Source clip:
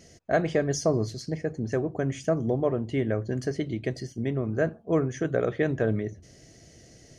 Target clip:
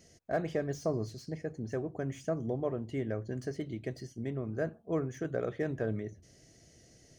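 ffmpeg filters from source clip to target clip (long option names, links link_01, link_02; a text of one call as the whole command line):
ffmpeg -i in.wav -filter_complex "[0:a]highshelf=frequency=8400:gain=6,acrossover=split=1700[link_01][link_02];[link_02]asoftclip=type=tanh:threshold=-40dB[link_03];[link_01][link_03]amix=inputs=2:normalize=0,volume=-8dB" out.wav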